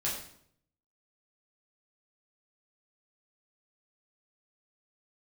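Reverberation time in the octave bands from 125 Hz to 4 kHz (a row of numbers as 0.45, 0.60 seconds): 0.95, 0.75, 0.70, 0.60, 0.55, 0.55 seconds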